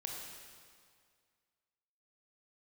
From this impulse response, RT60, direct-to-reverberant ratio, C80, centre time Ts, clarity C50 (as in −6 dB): 2.0 s, −1.0 dB, 2.5 dB, 90 ms, 0.5 dB